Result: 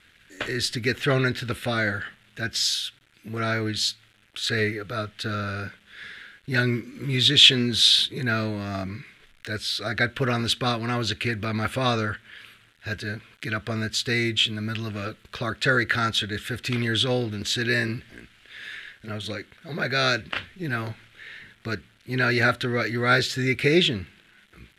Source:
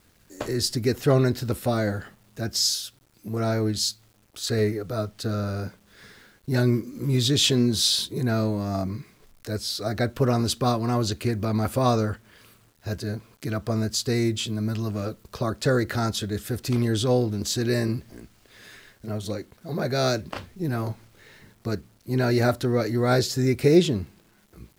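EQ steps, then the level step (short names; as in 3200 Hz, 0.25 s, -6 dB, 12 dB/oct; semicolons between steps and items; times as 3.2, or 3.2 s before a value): LPF 12000 Hz 24 dB/oct; band shelf 2300 Hz +14.5 dB; -3.5 dB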